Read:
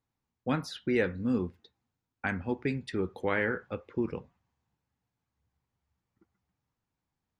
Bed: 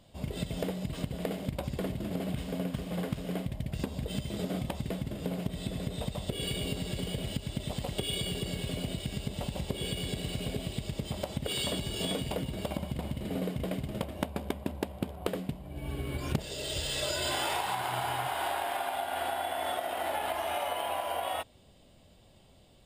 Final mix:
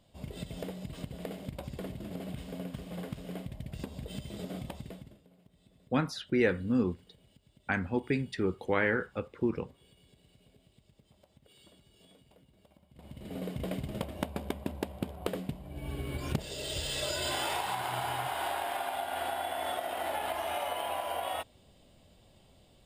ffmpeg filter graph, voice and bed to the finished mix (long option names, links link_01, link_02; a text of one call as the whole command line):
ffmpeg -i stem1.wav -i stem2.wav -filter_complex "[0:a]adelay=5450,volume=1dB[link_01];[1:a]volume=20.5dB,afade=type=out:start_time=4.68:duration=0.55:silence=0.0794328,afade=type=in:start_time=12.91:duration=0.77:silence=0.0473151[link_02];[link_01][link_02]amix=inputs=2:normalize=0" out.wav